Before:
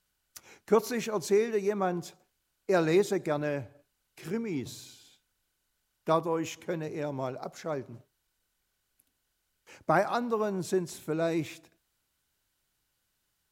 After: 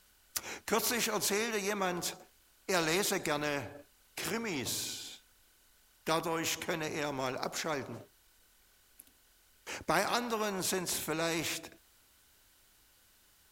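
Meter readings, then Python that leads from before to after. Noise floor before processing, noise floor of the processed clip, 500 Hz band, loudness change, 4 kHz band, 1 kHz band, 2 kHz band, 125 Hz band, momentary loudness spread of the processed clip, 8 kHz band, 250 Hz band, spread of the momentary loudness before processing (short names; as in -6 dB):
-79 dBFS, -66 dBFS, -7.0 dB, -3.5 dB, +8.5 dB, -2.5 dB, +3.0 dB, -6.0 dB, 15 LU, +9.0 dB, -5.5 dB, 17 LU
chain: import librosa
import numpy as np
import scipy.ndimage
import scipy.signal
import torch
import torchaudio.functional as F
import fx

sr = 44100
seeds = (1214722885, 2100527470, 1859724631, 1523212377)

y = fx.peak_eq(x, sr, hz=140.0, db=-11.0, octaves=0.44)
y = fx.spectral_comp(y, sr, ratio=2.0)
y = y * 10.0 ** (-2.5 / 20.0)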